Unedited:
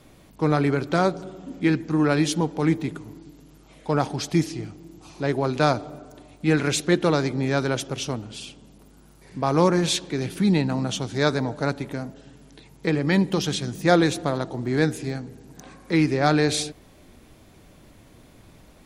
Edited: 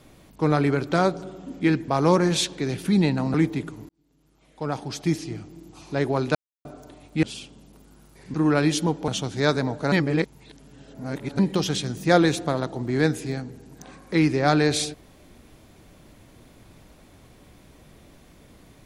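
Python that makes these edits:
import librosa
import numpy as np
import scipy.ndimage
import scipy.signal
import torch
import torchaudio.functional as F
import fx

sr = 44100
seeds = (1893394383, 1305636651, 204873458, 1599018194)

y = fx.edit(x, sr, fx.swap(start_s=1.88, length_s=0.74, other_s=9.4, other_length_s=1.46),
    fx.fade_in_span(start_s=3.17, length_s=1.59),
    fx.silence(start_s=5.63, length_s=0.3),
    fx.cut(start_s=6.51, length_s=1.78),
    fx.reverse_span(start_s=11.7, length_s=1.47), tone=tone)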